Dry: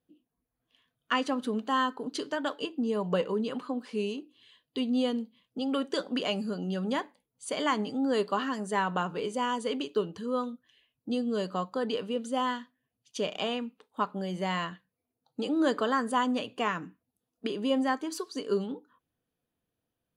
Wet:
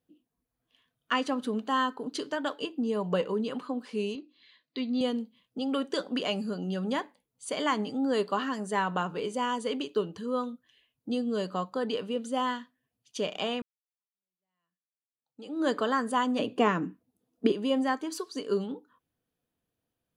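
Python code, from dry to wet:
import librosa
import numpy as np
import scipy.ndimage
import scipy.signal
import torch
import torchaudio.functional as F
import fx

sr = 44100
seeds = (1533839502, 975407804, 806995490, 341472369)

y = fx.cabinet(x, sr, low_hz=200.0, low_slope=12, high_hz=5200.0, hz=(440.0, 810.0, 2100.0, 3000.0, 4200.0), db=(-7, -7, 7, -7, 6), at=(4.15, 5.01))
y = fx.peak_eq(y, sr, hz=300.0, db=10.5, octaves=2.4, at=(16.39, 17.52))
y = fx.edit(y, sr, fx.fade_in_span(start_s=13.62, length_s=2.07, curve='exp'), tone=tone)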